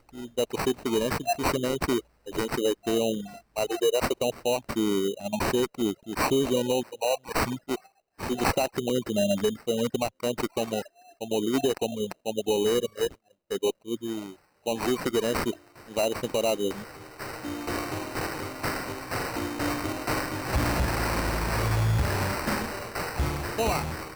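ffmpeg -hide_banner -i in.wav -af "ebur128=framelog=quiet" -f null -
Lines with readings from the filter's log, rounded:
Integrated loudness:
  I:         -28.3 LUFS
  Threshold: -38.5 LUFS
Loudness range:
  LRA:         3.5 LU
  Threshold: -48.5 LUFS
  LRA low:   -30.7 LUFS
  LRA high:  -27.3 LUFS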